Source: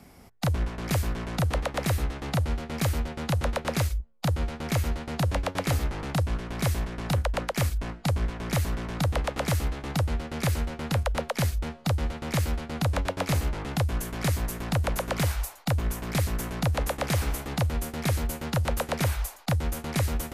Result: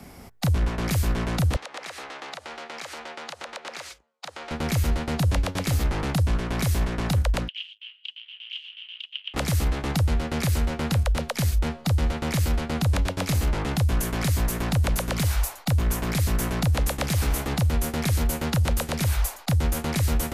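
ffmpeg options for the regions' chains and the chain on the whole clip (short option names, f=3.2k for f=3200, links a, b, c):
-filter_complex "[0:a]asettb=1/sr,asplit=3[a][b][c];[a]atrim=end=1.564[d];[b]atrim=start=1.56:end=4.51,asetpts=PTS-STARTPTS,afade=t=in:d=0.004:c=qsin,afade=t=out:st=2.946:d=0.004:c=qsin,highpass=650,lowpass=6.7k,acompressor=threshold=-39dB:ratio=12:attack=3.2:release=140:knee=1:detection=peak[e];[c]atrim=start=4.506[f];[d][e]acrossfade=d=0.004:c1=hsin:c2=qsin[g];[g][f]acrossfade=d=0.004:c1=qsin:c2=hsin,asettb=1/sr,asplit=3[h][i][j];[h]atrim=end=7.484[k];[i]atrim=start=7.48:end=9.34,asetpts=PTS-STARTPTS,afade=t=in:d=0.004:c=qsin,afade=t=out:st=1.856:d=0.004:c=qsin,aeval=exprs='0.119*sin(PI/2*1.78*val(0)/0.119)':c=same,asuperpass=centerf=3000:order=4:qfactor=6.4[l];[j]atrim=start=9.336[m];[k][l]acrossfade=d=0.004:c1=hsin:c2=qsin[n];[n][m]acrossfade=d=0.004:c1=qsin:c2=hsin,acrossover=split=250|3000[o][p][q];[p]acompressor=threshold=-34dB:ratio=6[r];[o][r][q]amix=inputs=3:normalize=0,alimiter=limit=-22.5dB:level=0:latency=1:release=24,volume=7dB"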